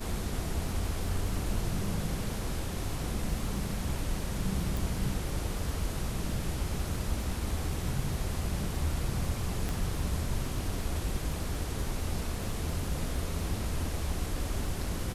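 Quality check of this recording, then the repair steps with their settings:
surface crackle 22 per second −39 dBFS
0:04.77: click
0:09.69: click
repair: click removal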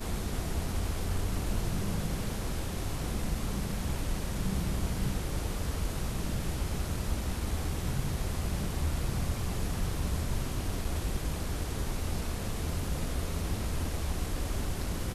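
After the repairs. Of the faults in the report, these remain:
0:09.69: click

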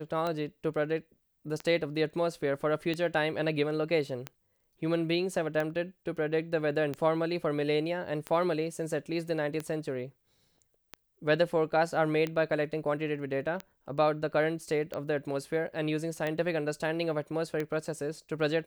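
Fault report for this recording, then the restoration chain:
scratch tick 45 rpm −20 dBFS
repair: click removal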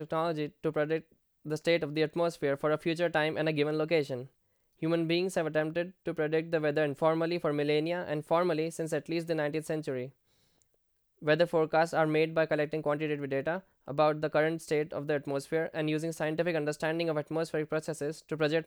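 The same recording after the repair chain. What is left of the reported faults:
none of them is left

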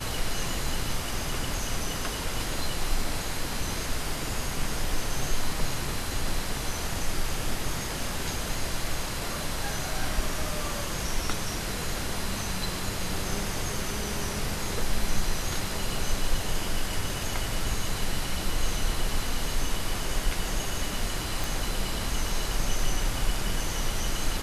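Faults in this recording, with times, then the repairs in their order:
0:21.44: click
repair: click removal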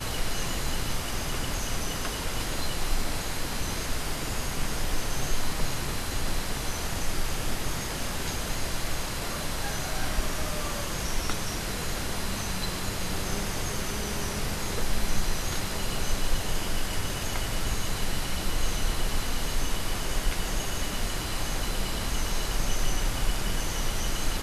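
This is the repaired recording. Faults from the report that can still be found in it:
none of them is left

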